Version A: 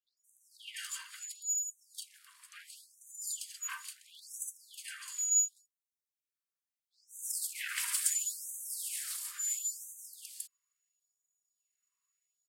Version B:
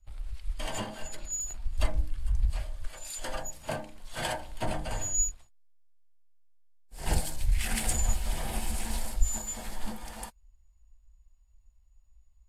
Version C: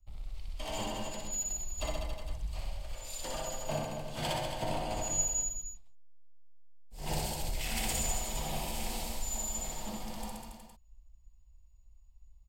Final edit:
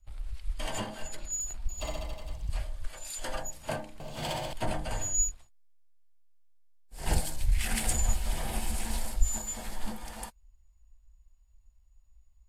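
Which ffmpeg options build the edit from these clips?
-filter_complex "[2:a]asplit=2[a][b];[1:a]asplit=3[c][d][e];[c]atrim=end=1.692[f];[a]atrim=start=1.688:end=2.492[g];[d]atrim=start=2.488:end=4.002[h];[b]atrim=start=3.998:end=4.532[i];[e]atrim=start=4.528[j];[f][g]acrossfade=d=0.004:c1=hsin:c2=hsin[k];[k][h]acrossfade=d=0.004:c1=hsin:c2=hsin[l];[l][i]acrossfade=d=0.004:c1=hsin:c2=hsin[m];[m][j]acrossfade=d=0.004:c1=hsin:c2=hsin"

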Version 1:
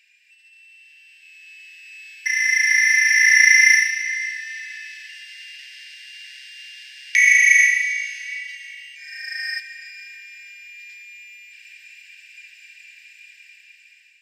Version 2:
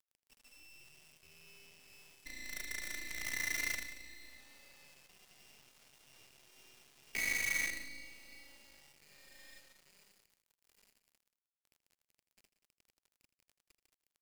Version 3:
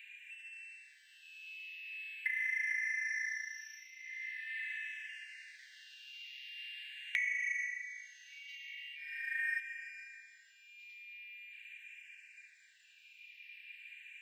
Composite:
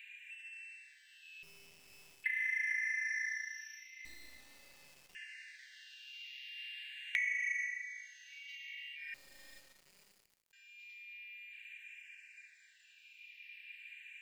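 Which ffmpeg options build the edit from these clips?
-filter_complex "[1:a]asplit=3[a][b][c];[2:a]asplit=4[d][e][f][g];[d]atrim=end=1.432[h];[a]atrim=start=1.428:end=2.242[i];[e]atrim=start=2.238:end=4.052[j];[b]atrim=start=4.048:end=5.152[k];[f]atrim=start=5.148:end=9.142[l];[c]atrim=start=9.138:end=10.532[m];[g]atrim=start=10.528[n];[h][i]acrossfade=d=0.004:c1=hsin:c2=hsin[o];[o][j]acrossfade=d=0.004:c1=hsin:c2=hsin[p];[p][k]acrossfade=d=0.004:c1=hsin:c2=hsin[q];[q][l]acrossfade=d=0.004:c1=hsin:c2=hsin[r];[r][m]acrossfade=d=0.004:c1=hsin:c2=hsin[s];[s][n]acrossfade=d=0.004:c1=hsin:c2=hsin"

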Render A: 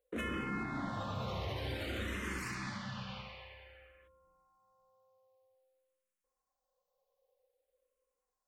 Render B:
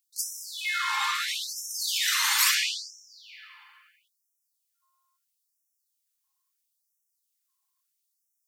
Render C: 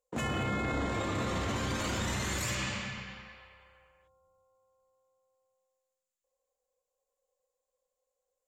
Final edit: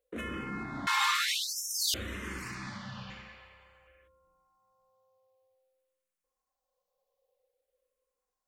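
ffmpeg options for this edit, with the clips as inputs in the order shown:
-filter_complex "[0:a]asplit=3[a][b][c];[a]atrim=end=0.872[d];[1:a]atrim=start=0.868:end=1.942[e];[b]atrim=start=1.938:end=3.102[f];[2:a]atrim=start=3.098:end=3.872[g];[c]atrim=start=3.868[h];[d][e]acrossfade=d=0.004:c1=hsin:c2=hsin[i];[i][f]acrossfade=d=0.004:c1=hsin:c2=hsin[j];[j][g]acrossfade=d=0.004:c1=hsin:c2=hsin[k];[k][h]acrossfade=d=0.004:c1=hsin:c2=hsin"

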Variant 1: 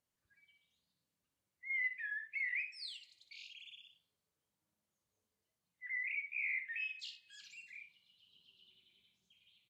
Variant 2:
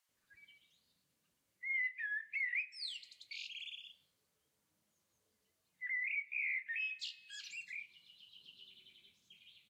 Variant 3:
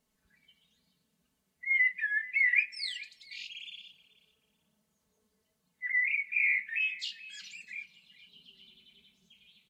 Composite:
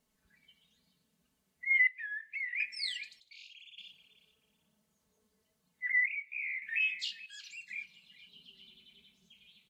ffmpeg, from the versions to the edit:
-filter_complex "[1:a]asplit=3[a][b][c];[2:a]asplit=5[d][e][f][g][h];[d]atrim=end=1.872[i];[a]atrim=start=1.868:end=2.602[j];[e]atrim=start=2.598:end=3.202[k];[0:a]atrim=start=3.198:end=3.782[l];[f]atrim=start=3.778:end=6.062[m];[b]atrim=start=6.058:end=6.622[n];[g]atrim=start=6.618:end=7.262[o];[c]atrim=start=7.258:end=7.702[p];[h]atrim=start=7.698[q];[i][j]acrossfade=d=0.004:c1=hsin:c2=hsin[r];[r][k]acrossfade=d=0.004:c1=hsin:c2=hsin[s];[s][l]acrossfade=d=0.004:c1=hsin:c2=hsin[t];[t][m]acrossfade=d=0.004:c1=hsin:c2=hsin[u];[u][n]acrossfade=d=0.004:c1=hsin:c2=hsin[v];[v][o]acrossfade=d=0.004:c1=hsin:c2=hsin[w];[w][p]acrossfade=d=0.004:c1=hsin:c2=hsin[x];[x][q]acrossfade=d=0.004:c1=hsin:c2=hsin"

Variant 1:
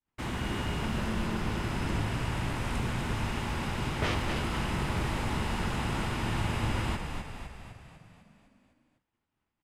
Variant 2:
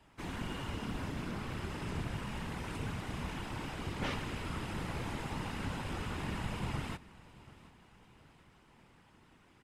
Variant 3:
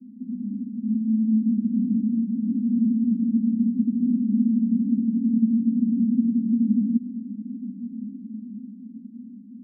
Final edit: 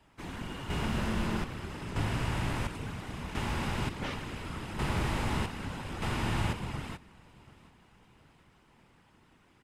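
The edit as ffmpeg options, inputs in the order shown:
-filter_complex "[0:a]asplit=5[a][b][c][d][e];[1:a]asplit=6[f][g][h][i][j][k];[f]atrim=end=0.702[l];[a]atrim=start=0.698:end=1.442[m];[g]atrim=start=1.438:end=1.962[n];[b]atrim=start=1.958:end=2.672[o];[h]atrim=start=2.668:end=3.352[p];[c]atrim=start=3.348:end=3.892[q];[i]atrim=start=3.888:end=4.792[r];[d]atrim=start=4.788:end=5.462[s];[j]atrim=start=5.458:end=6.022[t];[e]atrim=start=6.018:end=6.532[u];[k]atrim=start=6.528[v];[l][m]acrossfade=d=0.004:c1=hsin:c2=hsin[w];[w][n]acrossfade=d=0.004:c1=hsin:c2=hsin[x];[x][o]acrossfade=d=0.004:c1=hsin:c2=hsin[y];[y][p]acrossfade=d=0.004:c1=hsin:c2=hsin[z];[z][q]acrossfade=d=0.004:c1=hsin:c2=hsin[aa];[aa][r]acrossfade=d=0.004:c1=hsin:c2=hsin[ab];[ab][s]acrossfade=d=0.004:c1=hsin:c2=hsin[ac];[ac][t]acrossfade=d=0.004:c1=hsin:c2=hsin[ad];[ad][u]acrossfade=d=0.004:c1=hsin:c2=hsin[ae];[ae][v]acrossfade=d=0.004:c1=hsin:c2=hsin"

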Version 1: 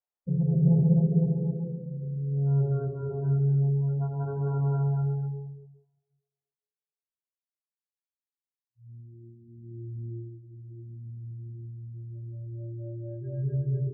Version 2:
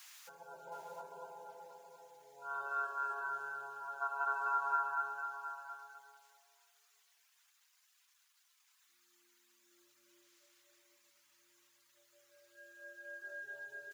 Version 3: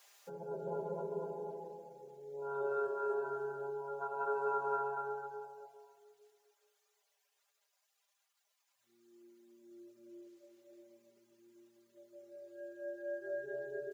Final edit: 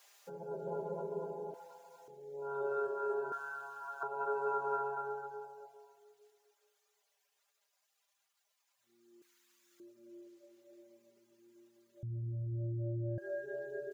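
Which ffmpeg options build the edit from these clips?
-filter_complex "[1:a]asplit=3[a][b][c];[2:a]asplit=5[d][e][f][g][h];[d]atrim=end=1.542[i];[a]atrim=start=1.538:end=2.082[j];[e]atrim=start=2.078:end=3.322[k];[b]atrim=start=3.318:end=4.032[l];[f]atrim=start=4.028:end=9.222[m];[c]atrim=start=9.218:end=9.802[n];[g]atrim=start=9.798:end=12.032[o];[0:a]atrim=start=12.028:end=13.182[p];[h]atrim=start=13.178[q];[i][j]acrossfade=d=0.004:c1=hsin:c2=hsin[r];[r][k]acrossfade=d=0.004:c1=hsin:c2=hsin[s];[s][l]acrossfade=d=0.004:c1=hsin:c2=hsin[t];[t][m]acrossfade=d=0.004:c1=hsin:c2=hsin[u];[u][n]acrossfade=d=0.004:c1=hsin:c2=hsin[v];[v][o]acrossfade=d=0.004:c1=hsin:c2=hsin[w];[w][p]acrossfade=d=0.004:c1=hsin:c2=hsin[x];[x][q]acrossfade=d=0.004:c1=hsin:c2=hsin"

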